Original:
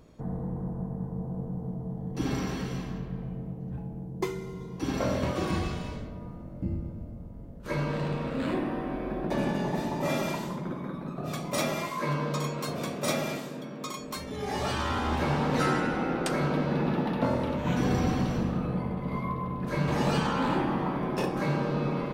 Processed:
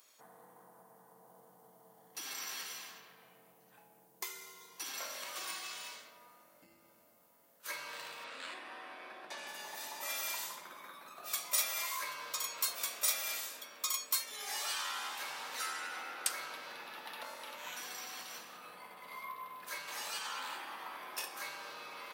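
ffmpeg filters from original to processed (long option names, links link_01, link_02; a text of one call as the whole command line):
ffmpeg -i in.wav -filter_complex "[0:a]asettb=1/sr,asplit=3[link_01][link_02][link_03];[link_01]atrim=end=8.244[link_04];[link_02]atrim=start=8.24:end=9.47,asetpts=PTS-STARTPTS,afade=type=in:duration=0.004:curve=qsin,afade=type=out:start_time=1.226:duration=0.004:curve=qsin,lowpass=6900[link_05];[link_03]atrim=start=9.466[link_06];[link_04][link_05]acrossfade=duration=0.004:curve1=hsin:curve2=qsin[link_07];[link_07][link_06]acrossfade=duration=0.004:curve1=qsin:curve2=hsin,acompressor=threshold=-30dB:ratio=6,highpass=1200,aemphasis=mode=production:type=75fm,volume=-2dB" out.wav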